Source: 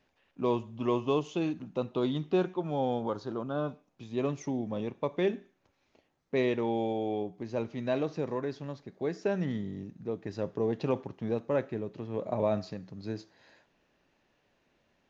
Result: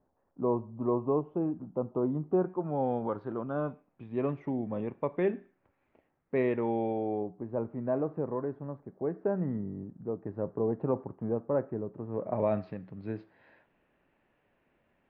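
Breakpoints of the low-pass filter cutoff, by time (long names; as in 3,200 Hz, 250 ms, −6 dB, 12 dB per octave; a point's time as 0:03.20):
low-pass filter 24 dB per octave
0:02.29 1,100 Hz
0:03.03 2,200 Hz
0:06.94 2,200 Hz
0:07.41 1,300 Hz
0:12.04 1,300 Hz
0:12.50 2,600 Hz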